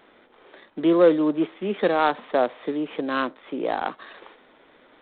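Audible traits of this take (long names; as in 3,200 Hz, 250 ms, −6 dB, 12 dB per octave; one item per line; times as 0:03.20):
a buzz of ramps at a fixed pitch in blocks of 8 samples
G.726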